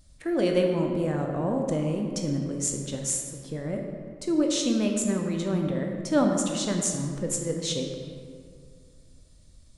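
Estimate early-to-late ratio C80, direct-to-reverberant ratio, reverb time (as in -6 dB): 5.0 dB, 2.0 dB, 2.2 s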